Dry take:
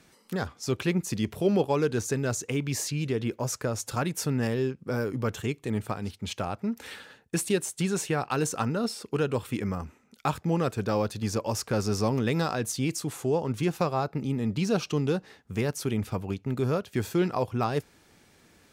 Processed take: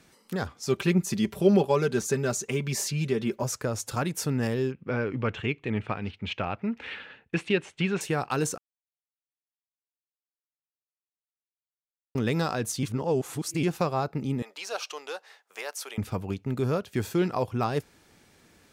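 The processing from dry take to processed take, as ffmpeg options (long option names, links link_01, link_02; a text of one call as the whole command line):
ffmpeg -i in.wav -filter_complex "[0:a]asettb=1/sr,asplit=3[link_01][link_02][link_03];[link_01]atrim=end=0.684[link_04];[link_02]atrim=start=0.68:end=3.43,asetpts=PTS-STARTPTS,afade=type=in:duration=0.004:curve=qsin,afade=type=out:start_time=2.746:duration=0.004:curve=qsin,aecho=1:1:5.1:0.65,atrim=end_sample=121275[link_05];[link_03]atrim=start=3.426[link_06];[link_04][link_05]acrossfade=duration=0.004:curve1=hsin:curve2=qsin[link_07];[link_07][link_06]acrossfade=duration=0.004:curve1=qsin:curve2=hsin,asettb=1/sr,asplit=3[link_08][link_09][link_10];[link_08]atrim=end=4.724[link_11];[link_09]atrim=start=4.72:end=8.01,asetpts=PTS-STARTPTS,afade=type=in:duration=0.004:curve=qsin,afade=type=out:start_time=3.286:duration=0.004:curve=qsin,lowpass=frequency=2600:width_type=q:width=2.4[link_12];[link_10]atrim=start=8.006[link_13];[link_11][link_12]acrossfade=duration=0.004:curve1=hsin:curve2=qsin[link_14];[link_14][link_13]acrossfade=duration=0.004:curve1=qsin:curve2=hsin,asettb=1/sr,asplit=3[link_15][link_16][link_17];[link_15]atrim=end=14.424[link_18];[link_16]atrim=start=14.42:end=15.98,asetpts=PTS-STARTPTS,afade=type=in:duration=0.004:curve=qsin,afade=type=out:start_time=1.556:duration=0.004:curve=qsin,highpass=frequency=600:width=0.5412,highpass=frequency=600:width=1.3066[link_19];[link_17]atrim=start=15.976[link_20];[link_18][link_19]acrossfade=duration=0.004:curve1=hsin:curve2=qsin[link_21];[link_21][link_20]acrossfade=duration=0.004:curve1=qsin:curve2=hsin,asplit=5[link_22][link_23][link_24][link_25][link_26];[link_22]atrim=end=8.58,asetpts=PTS-STARTPTS,afade=type=out:start_time=8.576:duration=0.004:curve=hsin[link_27];[link_23]atrim=start=8.58:end=12.15,asetpts=PTS-STARTPTS,volume=0[link_28];[link_24]atrim=start=12.15:end=12.832,asetpts=PTS-STARTPTS,afade=type=in:duration=0.004:curve=hsin[link_29];[link_25]atrim=start=12.828:end=13.632,asetpts=PTS-STARTPTS,areverse[link_30];[link_26]atrim=start=13.628[link_31];[link_27][link_28][link_29]concat=n=3:v=0:a=1[link_32];[link_32][link_30]acrossfade=duration=0.004:curve1=hsin:curve2=hsin[link_33];[link_33][link_31]acrossfade=duration=0.004:curve1=hsin:curve2=hsin" out.wav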